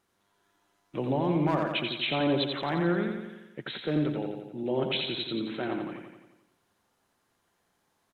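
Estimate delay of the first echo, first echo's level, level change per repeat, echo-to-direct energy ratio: 87 ms, -5.0 dB, -5.0 dB, -3.5 dB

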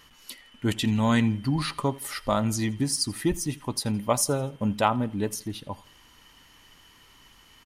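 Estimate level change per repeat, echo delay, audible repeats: -7.5 dB, 83 ms, 2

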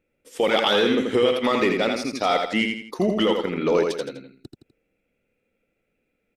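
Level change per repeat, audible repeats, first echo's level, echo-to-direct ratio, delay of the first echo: -8.0 dB, 3, -4.5 dB, -4.0 dB, 83 ms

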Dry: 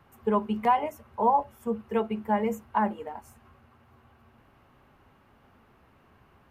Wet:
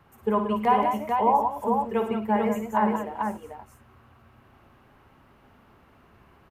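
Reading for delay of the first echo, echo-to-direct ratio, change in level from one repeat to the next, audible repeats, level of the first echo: 56 ms, -1.5 dB, no steady repeat, 4, -8.5 dB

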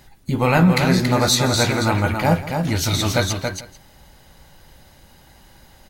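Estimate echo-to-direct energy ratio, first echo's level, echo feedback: -5.0 dB, -16.5 dB, no steady repeat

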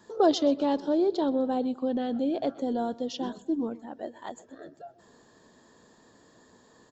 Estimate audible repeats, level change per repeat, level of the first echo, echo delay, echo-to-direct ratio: 3, -6.0 dB, -21.0 dB, 0.126 s, -20.0 dB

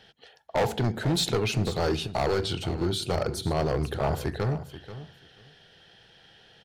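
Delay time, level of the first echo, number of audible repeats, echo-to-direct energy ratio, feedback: 0.485 s, -13.5 dB, 2, -13.5 dB, 15%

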